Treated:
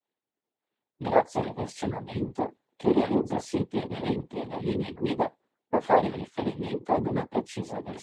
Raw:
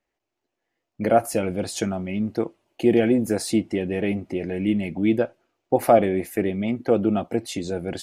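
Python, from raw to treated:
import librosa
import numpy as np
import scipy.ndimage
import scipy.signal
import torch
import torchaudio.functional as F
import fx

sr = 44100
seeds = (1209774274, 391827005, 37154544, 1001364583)

y = fx.high_shelf(x, sr, hz=4900.0, db=-11.0)
y = fx.doubler(y, sr, ms=20.0, db=-2.5)
y = fx.noise_vocoder(y, sr, seeds[0], bands=6)
y = fx.hpss(y, sr, part='harmonic', gain_db=-9)
y = y * 10.0 ** (-5.0 / 20.0)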